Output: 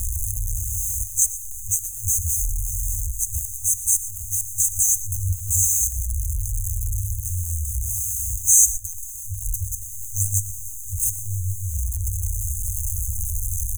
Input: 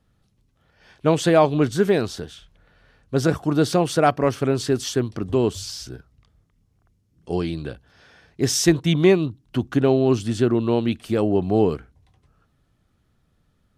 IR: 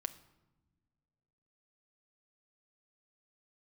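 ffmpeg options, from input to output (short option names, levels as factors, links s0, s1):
-filter_complex "[0:a]aeval=exprs='val(0)+0.5*0.0631*sgn(val(0))':c=same,lowshelf=f=280:g=-5,asplit=2[s0][s1];[s1]alimiter=limit=0.211:level=0:latency=1:release=152,volume=1.41[s2];[s0][s2]amix=inputs=2:normalize=0,asettb=1/sr,asplit=3[s3][s4][s5];[s3]atrim=end=8.444[s6];[s4]atrim=start=8.44:end=8.87,asetpts=PTS-STARTPTS,afade=t=in:d=0.004:c=qsin,afade=t=out:st=0.426:d=0.004:c=qsin,aeval=exprs='val(0)*gte(abs(val(0)),0.133)':c=same[s7];[s5]atrim=start=8.866[s8];[s6][s7]acrossfade=d=0.004:c1=hsin:c2=qsin[s9];[s9][s8]acrossfade=d=0.004:c1=qsin:c2=hsin,aecho=1:1:119:0.168,asplit=2[s10][s11];[1:a]atrim=start_sample=2205[s12];[s11][s12]afir=irnorm=-1:irlink=0,volume=0.944[s13];[s10][s13]amix=inputs=2:normalize=0,afftfilt=real='re*(1-between(b*sr/4096,100,6100))':imag='im*(1-between(b*sr/4096,100,6100))':win_size=4096:overlap=0.75"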